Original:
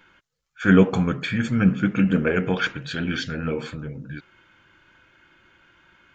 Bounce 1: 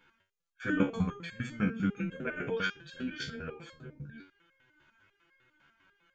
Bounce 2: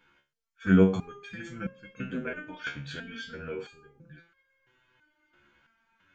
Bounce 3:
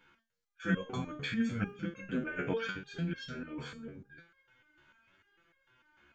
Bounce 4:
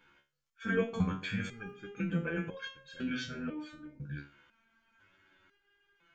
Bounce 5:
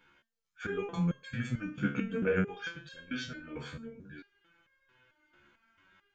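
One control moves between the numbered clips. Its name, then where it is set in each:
resonator arpeggio, rate: 10 Hz, 3 Hz, 6.7 Hz, 2 Hz, 4.5 Hz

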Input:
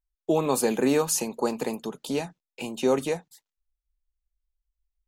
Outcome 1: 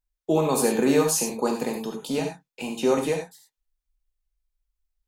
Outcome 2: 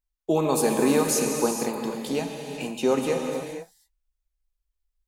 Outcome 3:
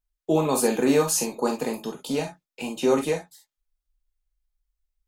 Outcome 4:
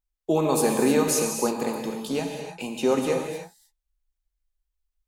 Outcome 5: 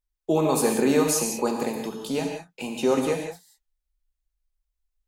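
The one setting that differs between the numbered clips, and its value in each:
gated-style reverb, gate: 120 ms, 510 ms, 80 ms, 340 ms, 210 ms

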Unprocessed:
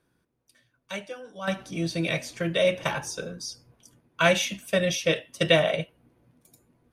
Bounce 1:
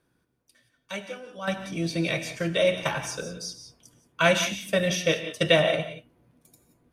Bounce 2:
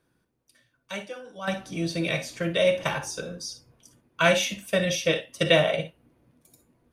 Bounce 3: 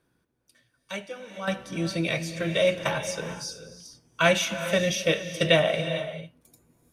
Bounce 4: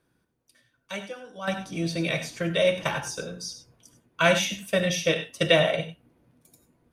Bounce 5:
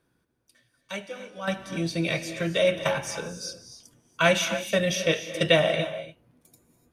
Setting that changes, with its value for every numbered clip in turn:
gated-style reverb, gate: 200 ms, 80 ms, 470 ms, 120 ms, 320 ms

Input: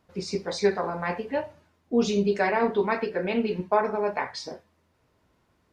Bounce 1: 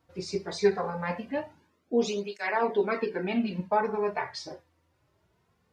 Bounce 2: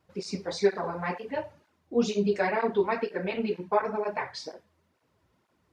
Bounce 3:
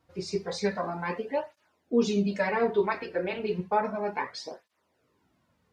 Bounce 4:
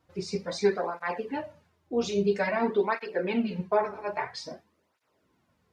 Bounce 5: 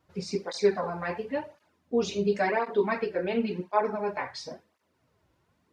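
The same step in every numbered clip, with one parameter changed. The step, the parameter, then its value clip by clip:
cancelling through-zero flanger, nulls at: 0.21 Hz, 2.1 Hz, 0.32 Hz, 0.5 Hz, 0.94 Hz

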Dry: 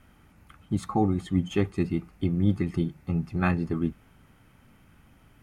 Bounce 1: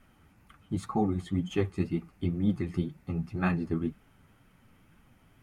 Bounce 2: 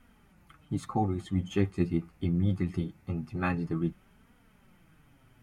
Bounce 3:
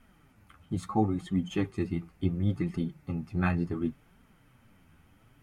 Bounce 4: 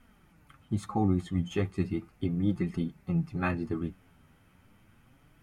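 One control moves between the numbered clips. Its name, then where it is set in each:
flange, rate: 2 Hz, 0.23 Hz, 0.71 Hz, 0.35 Hz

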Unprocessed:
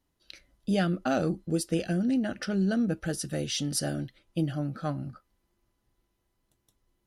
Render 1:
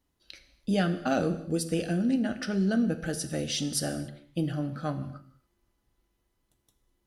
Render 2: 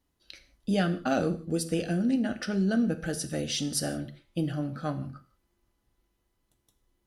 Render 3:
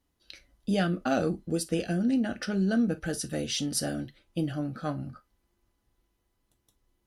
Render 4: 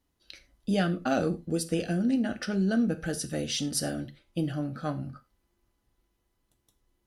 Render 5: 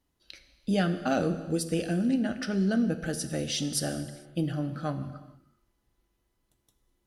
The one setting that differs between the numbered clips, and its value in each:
gated-style reverb, gate: 310 ms, 200 ms, 80 ms, 130 ms, 480 ms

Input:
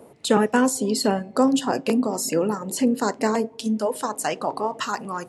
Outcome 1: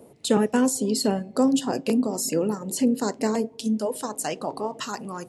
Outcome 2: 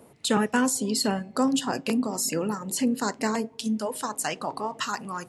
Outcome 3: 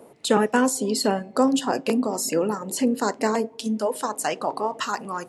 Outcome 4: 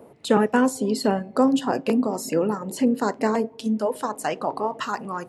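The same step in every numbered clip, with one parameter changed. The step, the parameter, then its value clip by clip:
peaking EQ, frequency: 1.3 kHz, 500 Hz, 73 Hz, 7.7 kHz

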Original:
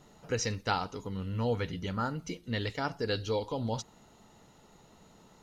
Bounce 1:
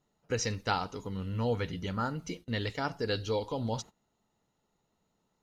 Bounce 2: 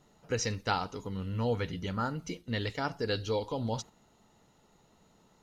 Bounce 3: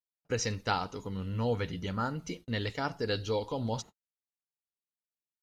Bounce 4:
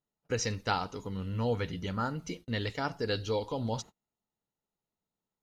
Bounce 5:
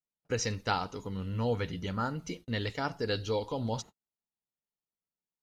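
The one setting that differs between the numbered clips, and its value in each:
gate, range: -19 dB, -6 dB, -58 dB, -34 dB, -46 dB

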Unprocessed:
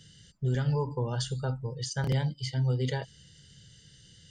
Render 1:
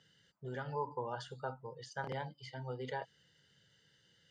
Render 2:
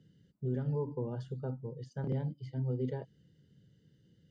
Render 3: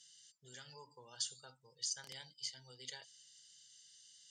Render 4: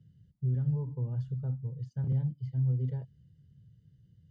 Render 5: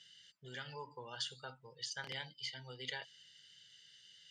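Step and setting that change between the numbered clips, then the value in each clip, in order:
band-pass filter, frequency: 960 Hz, 290 Hz, 6.9 kHz, 110 Hz, 2.7 kHz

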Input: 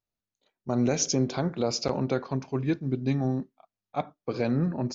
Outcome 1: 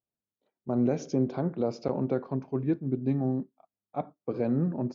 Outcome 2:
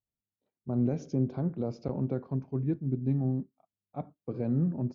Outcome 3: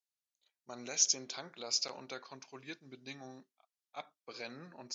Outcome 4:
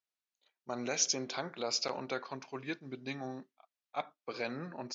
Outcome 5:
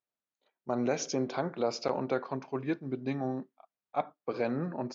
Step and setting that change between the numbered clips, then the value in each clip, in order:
band-pass filter, frequency: 300 Hz, 110 Hz, 7.5 kHz, 2.9 kHz, 1 kHz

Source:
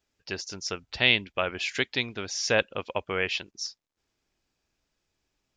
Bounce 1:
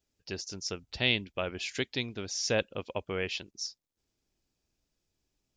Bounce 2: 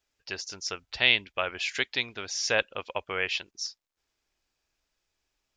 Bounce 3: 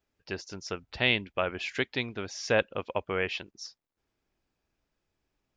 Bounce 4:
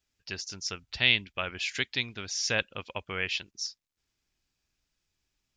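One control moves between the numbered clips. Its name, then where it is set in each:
peaking EQ, frequency: 1.5 kHz, 170 Hz, 7.6 kHz, 530 Hz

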